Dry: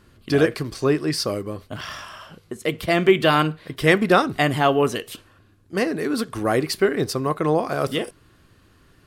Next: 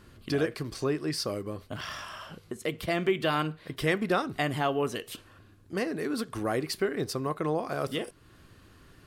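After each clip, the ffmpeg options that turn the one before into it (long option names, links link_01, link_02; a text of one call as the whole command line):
ffmpeg -i in.wav -af "acompressor=threshold=-42dB:ratio=1.5" out.wav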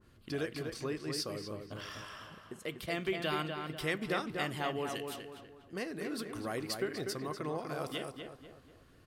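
ffmpeg -i in.wav -filter_complex "[0:a]asplit=2[link_01][link_02];[link_02]adelay=245,lowpass=frequency=2800:poles=1,volume=-5dB,asplit=2[link_03][link_04];[link_04]adelay=245,lowpass=frequency=2800:poles=1,volume=0.43,asplit=2[link_05][link_06];[link_06]adelay=245,lowpass=frequency=2800:poles=1,volume=0.43,asplit=2[link_07][link_08];[link_08]adelay=245,lowpass=frequency=2800:poles=1,volume=0.43,asplit=2[link_09][link_10];[link_10]adelay=245,lowpass=frequency=2800:poles=1,volume=0.43[link_11];[link_03][link_05][link_07][link_09][link_11]amix=inputs=5:normalize=0[link_12];[link_01][link_12]amix=inputs=2:normalize=0,adynamicequalizer=threshold=0.0112:dfrequency=1700:dqfactor=0.7:tfrequency=1700:tqfactor=0.7:attack=5:release=100:ratio=0.375:range=2.5:mode=boostabove:tftype=highshelf,volume=-9dB" out.wav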